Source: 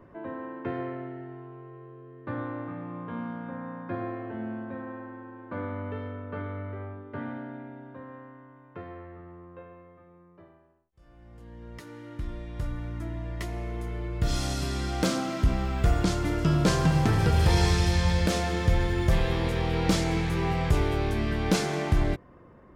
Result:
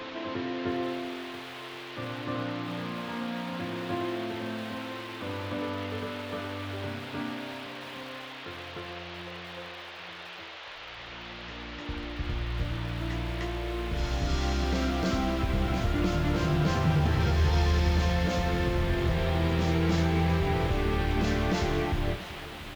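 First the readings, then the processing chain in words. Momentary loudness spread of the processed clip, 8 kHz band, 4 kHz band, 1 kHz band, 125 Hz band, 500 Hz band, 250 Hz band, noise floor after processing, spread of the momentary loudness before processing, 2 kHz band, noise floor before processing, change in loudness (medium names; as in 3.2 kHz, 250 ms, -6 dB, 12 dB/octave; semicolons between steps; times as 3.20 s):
14 LU, -7.0 dB, +0.5 dB, 0.0 dB, -1.5 dB, -0.5 dB, -0.5 dB, -43 dBFS, 21 LU, +1.0 dB, -54 dBFS, -2.0 dB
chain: treble shelf 6.3 kHz -10.5 dB; peak limiter -20.5 dBFS, peak gain reduction 8.5 dB; band noise 430–3600 Hz -45 dBFS; flange 0.19 Hz, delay 8.9 ms, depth 7.2 ms, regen -32%; reverse echo 303 ms -3 dB; resampled via 16 kHz; bit-crushed delay 682 ms, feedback 55%, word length 7-bit, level -14.5 dB; trim +3.5 dB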